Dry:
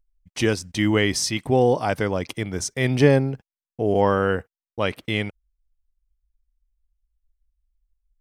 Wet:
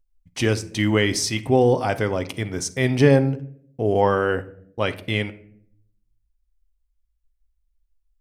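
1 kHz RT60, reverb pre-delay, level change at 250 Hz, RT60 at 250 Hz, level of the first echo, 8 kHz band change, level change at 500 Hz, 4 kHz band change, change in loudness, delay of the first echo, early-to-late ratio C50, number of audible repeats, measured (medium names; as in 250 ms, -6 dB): 0.50 s, 8 ms, +0.5 dB, 0.95 s, no echo, 0.0 dB, +1.0 dB, +0.5 dB, +1.0 dB, no echo, 16.0 dB, no echo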